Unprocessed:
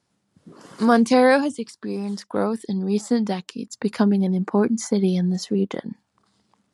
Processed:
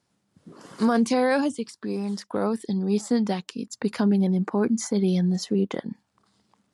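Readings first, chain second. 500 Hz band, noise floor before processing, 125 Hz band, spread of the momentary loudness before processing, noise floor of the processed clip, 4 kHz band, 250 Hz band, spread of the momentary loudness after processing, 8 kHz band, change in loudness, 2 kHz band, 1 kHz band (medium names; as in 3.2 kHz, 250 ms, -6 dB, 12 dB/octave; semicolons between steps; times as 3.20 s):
-4.5 dB, -73 dBFS, -1.5 dB, 13 LU, -74 dBFS, -2.5 dB, -2.5 dB, 9 LU, -1.0 dB, -3.0 dB, -5.5 dB, -5.5 dB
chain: peak limiter -12.5 dBFS, peak gain reduction 7.5 dB; trim -1 dB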